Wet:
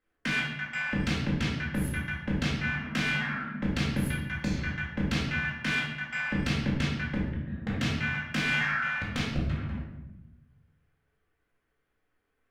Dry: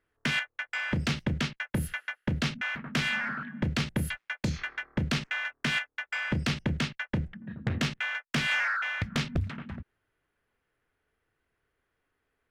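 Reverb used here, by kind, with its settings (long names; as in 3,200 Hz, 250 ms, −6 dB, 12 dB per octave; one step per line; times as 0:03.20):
rectangular room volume 370 cubic metres, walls mixed, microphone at 2.1 metres
level −6 dB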